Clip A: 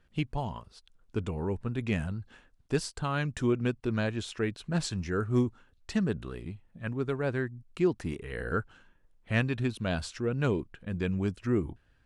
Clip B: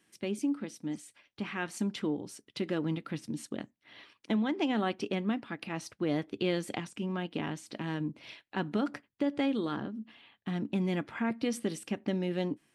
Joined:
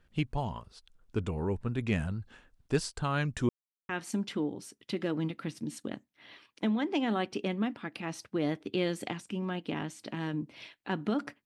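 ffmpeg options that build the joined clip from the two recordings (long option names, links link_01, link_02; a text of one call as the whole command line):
ffmpeg -i cue0.wav -i cue1.wav -filter_complex "[0:a]apad=whole_dur=11.45,atrim=end=11.45,asplit=2[link_01][link_02];[link_01]atrim=end=3.49,asetpts=PTS-STARTPTS,afade=type=out:start_time=3.486:duration=0.004:curve=hsin[link_03];[link_02]atrim=start=3.49:end=3.89,asetpts=PTS-STARTPTS,volume=0[link_04];[1:a]atrim=start=1.56:end=9.12,asetpts=PTS-STARTPTS,afade=type=in:duration=0.004:curve=hsin[link_05];[link_03][link_04][link_05]concat=n=3:v=0:a=1" out.wav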